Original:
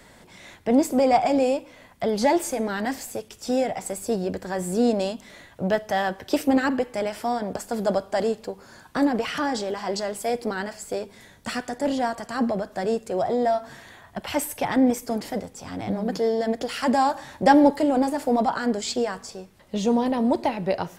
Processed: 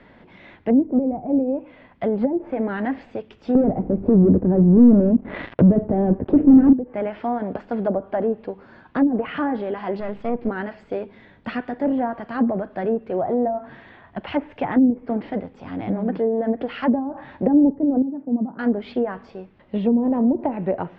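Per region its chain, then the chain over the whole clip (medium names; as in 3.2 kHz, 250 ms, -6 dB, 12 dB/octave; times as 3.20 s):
3.55–6.73 s: low-pass 7.6 kHz 24 dB/octave + waveshaping leveller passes 5
10.00–10.49 s: partial rectifier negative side -7 dB + tone controls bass +7 dB, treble +3 dB
18.02–18.59 s: band-pass filter 210 Hz, Q 2 + distance through air 370 m
whole clip: low-pass that closes with the level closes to 320 Hz, closed at -16 dBFS; low-pass 3 kHz 24 dB/octave; peaking EQ 270 Hz +5 dB 1.2 oct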